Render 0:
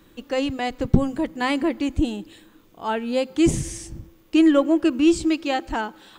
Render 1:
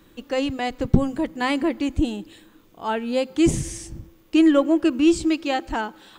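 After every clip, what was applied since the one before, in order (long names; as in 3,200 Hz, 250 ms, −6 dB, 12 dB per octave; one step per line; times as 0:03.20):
no processing that can be heard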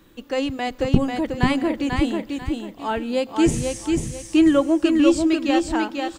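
repeating echo 492 ms, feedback 29%, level −4 dB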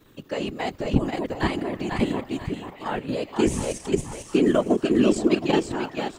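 output level in coarse steps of 9 dB
random phases in short frames
echo through a band-pass that steps 718 ms, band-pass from 1,000 Hz, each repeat 0.7 octaves, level −9 dB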